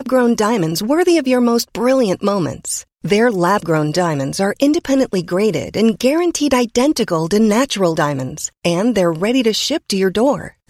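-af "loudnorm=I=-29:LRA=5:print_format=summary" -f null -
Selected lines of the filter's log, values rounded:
Input Integrated:    -16.2 LUFS
Input True Peak:      -1.7 dBTP
Input LRA:             1.1 LU
Input Threshold:     -26.2 LUFS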